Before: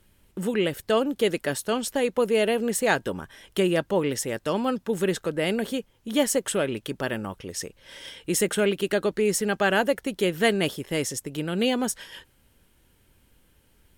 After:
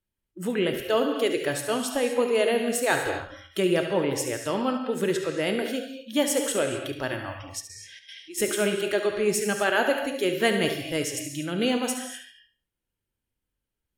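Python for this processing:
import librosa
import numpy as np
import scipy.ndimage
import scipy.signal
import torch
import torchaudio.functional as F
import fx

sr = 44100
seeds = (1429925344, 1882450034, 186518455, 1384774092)

p1 = fx.rev_gated(x, sr, seeds[0], gate_ms=280, shape='flat', drr_db=4.5)
p2 = fx.step_gate(p1, sr, bpm=154, pattern='xx.xx..x', floor_db=-12.0, edge_ms=4.5, at=(7.59, 8.37), fade=0.02)
p3 = fx.noise_reduce_blind(p2, sr, reduce_db=24)
p4 = p3 + fx.echo_feedback(p3, sr, ms=71, feedback_pct=28, wet_db=-11.0, dry=0)
y = F.gain(torch.from_numpy(p4), -1.5).numpy()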